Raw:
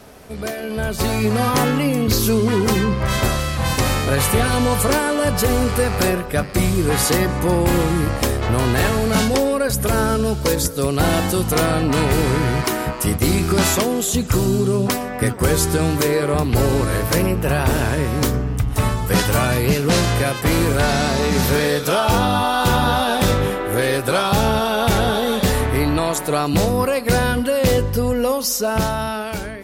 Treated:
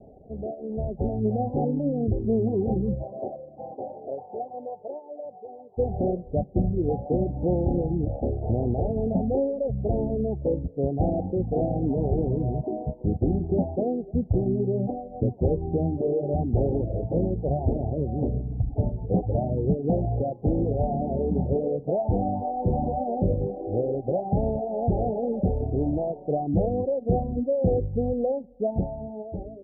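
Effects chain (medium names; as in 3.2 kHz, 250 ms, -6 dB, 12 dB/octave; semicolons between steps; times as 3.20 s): steep low-pass 790 Hz 96 dB/octave; reverb removal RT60 0.84 s; 3.02–5.77 s: high-pass 370 Hz -> 1.3 kHz 12 dB/octave; trim -4.5 dB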